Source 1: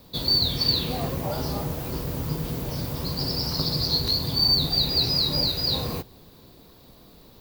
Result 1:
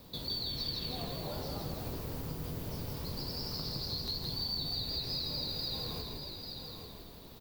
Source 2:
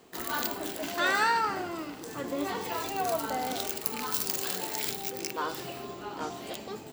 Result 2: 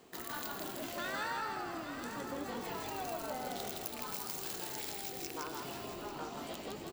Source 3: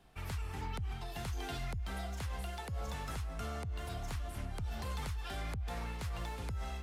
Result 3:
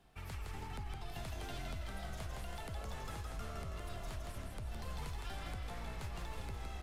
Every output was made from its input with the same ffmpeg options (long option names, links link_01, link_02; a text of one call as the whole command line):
ffmpeg -i in.wav -filter_complex "[0:a]asplit=2[link_01][link_02];[link_02]aecho=0:1:842:0.15[link_03];[link_01][link_03]amix=inputs=2:normalize=0,acompressor=threshold=-40dB:ratio=2.5,asplit=2[link_04][link_05];[link_05]asplit=7[link_06][link_07][link_08][link_09][link_10][link_11][link_12];[link_06]adelay=163,afreqshift=-50,volume=-3dB[link_13];[link_07]adelay=326,afreqshift=-100,volume=-8.8dB[link_14];[link_08]adelay=489,afreqshift=-150,volume=-14.7dB[link_15];[link_09]adelay=652,afreqshift=-200,volume=-20.5dB[link_16];[link_10]adelay=815,afreqshift=-250,volume=-26.4dB[link_17];[link_11]adelay=978,afreqshift=-300,volume=-32.2dB[link_18];[link_12]adelay=1141,afreqshift=-350,volume=-38.1dB[link_19];[link_13][link_14][link_15][link_16][link_17][link_18][link_19]amix=inputs=7:normalize=0[link_20];[link_04][link_20]amix=inputs=2:normalize=0,volume=-3dB" out.wav